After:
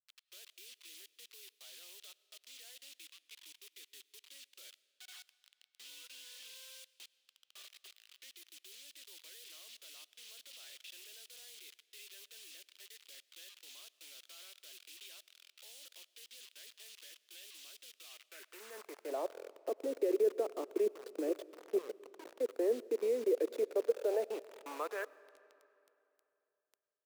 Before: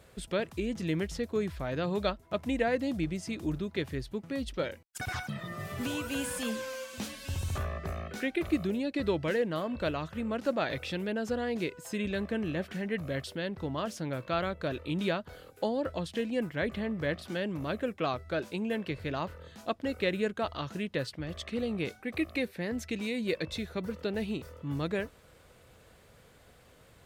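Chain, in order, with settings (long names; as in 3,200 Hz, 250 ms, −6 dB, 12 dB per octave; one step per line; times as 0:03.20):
loose part that buzzes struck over −36 dBFS, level −37 dBFS
Butterworth high-pass 230 Hz 72 dB per octave
0:02.77–0:03.66: low-shelf EQ 300 Hz −10 dB
0:20.86–0:22.41: compressor whose output falls as the input rises −42 dBFS, ratio −1
brickwall limiter −27 dBFS, peak gain reduction 10.5 dB
output level in coarse steps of 20 dB
band-pass filter sweep 370 Hz → 3,100 Hz, 0:23.40–0:26.21
bit reduction 10 bits
high-pass filter sweep 3,200 Hz → 450 Hz, 0:18.07–0:19.37
convolution reverb RT60 2.9 s, pre-delay 60 ms, DRR 20 dB
level +9 dB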